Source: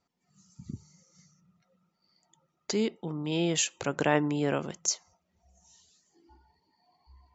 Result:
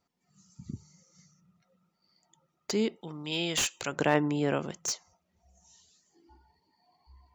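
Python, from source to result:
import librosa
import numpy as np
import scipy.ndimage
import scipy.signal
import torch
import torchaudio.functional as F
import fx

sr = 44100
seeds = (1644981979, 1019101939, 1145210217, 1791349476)

y = fx.tilt_shelf(x, sr, db=-7.0, hz=1400.0, at=(3.01, 3.92))
y = fx.slew_limit(y, sr, full_power_hz=260.0)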